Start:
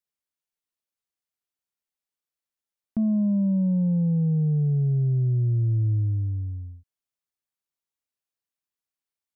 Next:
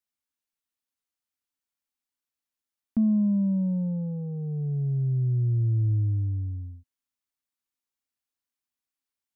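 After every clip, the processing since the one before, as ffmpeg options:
ffmpeg -i in.wav -af "equalizer=frequency=160:width_type=o:width=0.33:gain=-11,equalizer=frequency=250:width_type=o:width=0.33:gain=7,equalizer=frequency=400:width_type=o:width=0.33:gain=-6,equalizer=frequency=630:width_type=o:width=0.33:gain=-6" out.wav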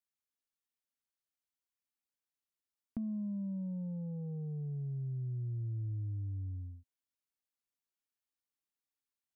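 ffmpeg -i in.wav -af "acompressor=threshold=-31dB:ratio=4,volume=-6.5dB" out.wav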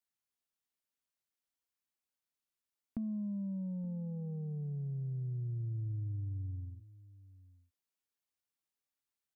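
ffmpeg -i in.wav -filter_complex "[0:a]asplit=2[link_01][link_02];[link_02]adelay=874.6,volume=-19dB,highshelf=frequency=4000:gain=-19.7[link_03];[link_01][link_03]amix=inputs=2:normalize=0" out.wav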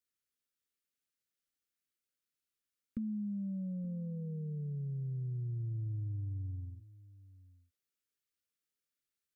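ffmpeg -i in.wav -af "asuperstop=centerf=820:order=20:qfactor=1.4" out.wav

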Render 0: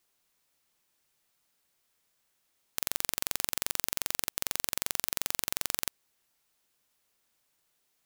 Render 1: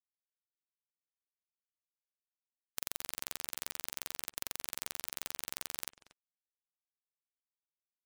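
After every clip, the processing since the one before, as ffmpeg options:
ffmpeg -i in.wav -filter_complex "[0:a]acompressor=threshold=-36dB:ratio=6,asplit=2[link_01][link_02];[link_02]adelay=233,lowpass=frequency=4400:poles=1,volume=-16dB,asplit=2[link_03][link_04];[link_04]adelay=233,lowpass=frequency=4400:poles=1,volume=0.16[link_05];[link_01][link_03][link_05]amix=inputs=3:normalize=0,afftfilt=real='re*gte(hypot(re,im),0.000501)':imag='im*gte(hypot(re,im),0.000501)':win_size=1024:overlap=0.75,volume=3.5dB" out.wav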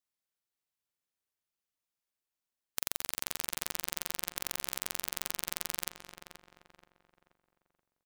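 ffmpeg -i in.wav -filter_complex "[0:a]asplit=2[link_01][link_02];[link_02]adelay=479,lowpass=frequency=2400:poles=1,volume=-7.5dB,asplit=2[link_03][link_04];[link_04]adelay=479,lowpass=frequency=2400:poles=1,volume=0.41,asplit=2[link_05][link_06];[link_06]adelay=479,lowpass=frequency=2400:poles=1,volume=0.41,asplit=2[link_07][link_08];[link_08]adelay=479,lowpass=frequency=2400:poles=1,volume=0.41,asplit=2[link_09][link_10];[link_10]adelay=479,lowpass=frequency=2400:poles=1,volume=0.41[link_11];[link_01][link_03][link_05][link_07][link_09][link_11]amix=inputs=6:normalize=0,volume=4.5dB" out.wav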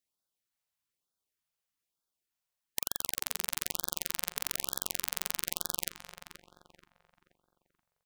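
ffmpeg -i in.wav -af "afftfilt=real='re*(1-between(b*sr/1024,270*pow(2400/270,0.5+0.5*sin(2*PI*1.1*pts/sr))/1.41,270*pow(2400/270,0.5+0.5*sin(2*PI*1.1*pts/sr))*1.41))':imag='im*(1-between(b*sr/1024,270*pow(2400/270,0.5+0.5*sin(2*PI*1.1*pts/sr))/1.41,270*pow(2400/270,0.5+0.5*sin(2*PI*1.1*pts/sr))*1.41))':win_size=1024:overlap=0.75,volume=2dB" out.wav

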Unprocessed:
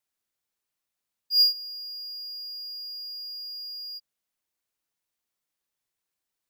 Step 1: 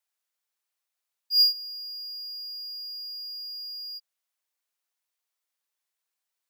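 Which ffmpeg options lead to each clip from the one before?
ffmpeg -i in.wav -af "highpass=580" out.wav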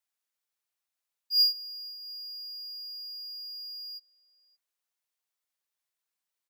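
ffmpeg -i in.wav -filter_complex "[0:a]asplit=2[link_01][link_02];[link_02]adelay=571.4,volume=-19dB,highshelf=frequency=4000:gain=-12.9[link_03];[link_01][link_03]amix=inputs=2:normalize=0,volume=-3dB" out.wav

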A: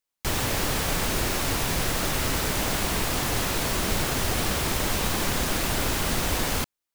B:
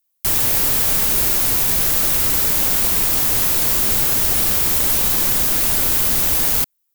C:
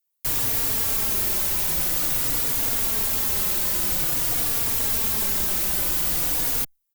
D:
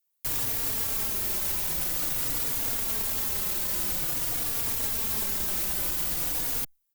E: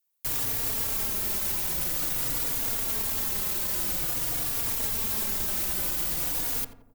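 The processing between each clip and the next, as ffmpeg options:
ffmpeg -i in.wav -af "aemphasis=mode=production:type=50fm" out.wav
ffmpeg -i in.wav -filter_complex "[0:a]asplit=2[link_01][link_02];[link_02]adelay=3.6,afreqshift=-0.49[link_03];[link_01][link_03]amix=inputs=2:normalize=1,volume=-3.5dB" out.wav
ffmpeg -i in.wav -af "alimiter=limit=-19dB:level=0:latency=1" out.wav
ffmpeg -i in.wav -filter_complex "[0:a]asplit=2[link_01][link_02];[link_02]adelay=87,lowpass=frequency=1200:poles=1,volume=-8dB,asplit=2[link_03][link_04];[link_04]adelay=87,lowpass=frequency=1200:poles=1,volume=0.54,asplit=2[link_05][link_06];[link_06]adelay=87,lowpass=frequency=1200:poles=1,volume=0.54,asplit=2[link_07][link_08];[link_08]adelay=87,lowpass=frequency=1200:poles=1,volume=0.54,asplit=2[link_09][link_10];[link_10]adelay=87,lowpass=frequency=1200:poles=1,volume=0.54,asplit=2[link_11][link_12];[link_12]adelay=87,lowpass=frequency=1200:poles=1,volume=0.54[link_13];[link_01][link_03][link_05][link_07][link_09][link_11][link_13]amix=inputs=7:normalize=0" out.wav

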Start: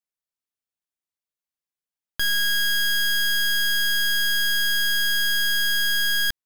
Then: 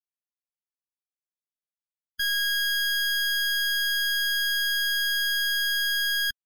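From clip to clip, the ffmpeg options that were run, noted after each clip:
ffmpeg -i in.wav -filter_complex "[0:a]afftdn=noise_reduction=27:noise_floor=-29,acrossover=split=440[link_01][link_02];[link_01]alimiter=level_in=10.5dB:limit=-24dB:level=0:latency=1,volume=-10.5dB[link_03];[link_03][link_02]amix=inputs=2:normalize=0,volume=-2.5dB" out.wav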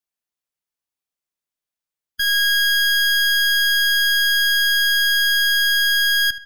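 ffmpeg -i in.wav -filter_complex "[0:a]asplit=2[link_01][link_02];[link_02]adelay=75,lowpass=frequency=3600:poles=1,volume=-14dB,asplit=2[link_03][link_04];[link_04]adelay=75,lowpass=frequency=3600:poles=1,volume=0.45,asplit=2[link_05][link_06];[link_06]adelay=75,lowpass=frequency=3600:poles=1,volume=0.45,asplit=2[link_07][link_08];[link_08]adelay=75,lowpass=frequency=3600:poles=1,volume=0.45[link_09];[link_01][link_03][link_05][link_07][link_09]amix=inputs=5:normalize=0,volume=6.5dB" out.wav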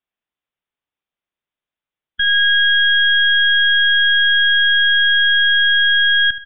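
ffmpeg -i in.wav -af "aresample=8000,aresample=44100,volume=4.5dB" out.wav

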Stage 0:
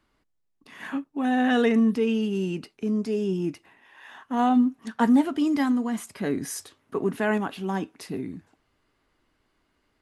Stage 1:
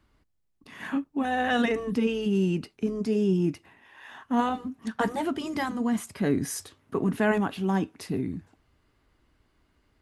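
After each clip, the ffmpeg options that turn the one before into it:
ffmpeg -i in.wav -af "afftfilt=real='re*lt(hypot(re,im),0.708)':imag='im*lt(hypot(re,im),0.708)':win_size=1024:overlap=0.75,equalizer=frequency=61:width_type=o:width=2.7:gain=10.5" out.wav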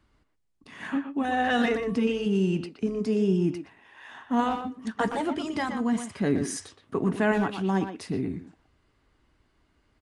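ffmpeg -i in.wav -filter_complex "[0:a]aresample=22050,aresample=44100,asplit=2[link_01][link_02];[link_02]adelay=120,highpass=300,lowpass=3400,asoftclip=type=hard:threshold=-20.5dB,volume=-7dB[link_03];[link_01][link_03]amix=inputs=2:normalize=0" out.wav

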